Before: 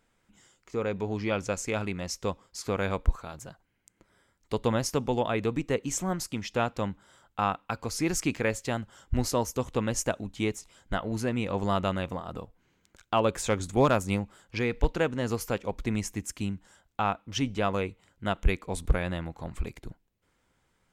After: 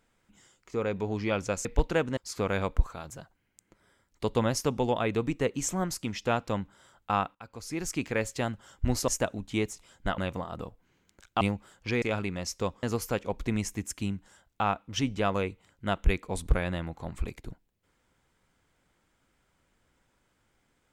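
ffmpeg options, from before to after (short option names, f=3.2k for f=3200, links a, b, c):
-filter_complex "[0:a]asplit=9[a][b][c][d][e][f][g][h][i];[a]atrim=end=1.652[j];[b]atrim=start=14.698:end=15.222[k];[c]atrim=start=2.458:end=7.64,asetpts=PTS-STARTPTS,afade=t=out:st=5.178:d=0.004:c=hsin:silence=0.141254[l];[d]atrim=start=7.64:end=9.372,asetpts=PTS-STARTPTS,afade=t=in:d=1.01:silence=0.141254[m];[e]atrim=start=9.938:end=11.042[n];[f]atrim=start=11.938:end=13.172[o];[g]atrim=start=14.088:end=14.702[p];[h]atrim=start=1.648:end=2.462[q];[i]atrim=start=15.218[r];[j][k]acrossfade=d=0.004:c1=hsin:c2=hsin[s];[l][m]concat=n=2:v=0:a=1[t];[s][t]acrossfade=d=0.004:c1=hsin:c2=hsin[u];[u][n]acrossfade=d=0.004:c1=hsin:c2=hsin[v];[v][o]acrossfade=d=0.004:c1=hsin:c2=hsin[w];[w][p]acrossfade=d=0.004:c1=hsin:c2=hsin[x];[x][q]acrossfade=d=0.004:c1=hsin:c2=hsin[y];[y][r]acrossfade=d=0.004:c1=hsin:c2=hsin"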